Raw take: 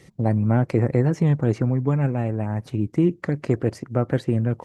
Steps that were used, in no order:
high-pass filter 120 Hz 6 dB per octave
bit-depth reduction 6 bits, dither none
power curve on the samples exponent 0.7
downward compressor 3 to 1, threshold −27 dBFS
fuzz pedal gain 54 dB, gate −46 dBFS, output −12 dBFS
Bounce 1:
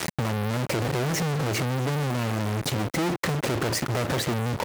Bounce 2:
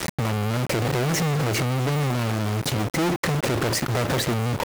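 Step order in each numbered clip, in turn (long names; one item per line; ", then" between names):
fuzz pedal, then bit-depth reduction, then power curve on the samples, then high-pass filter, then downward compressor
fuzz pedal, then downward compressor, then high-pass filter, then power curve on the samples, then bit-depth reduction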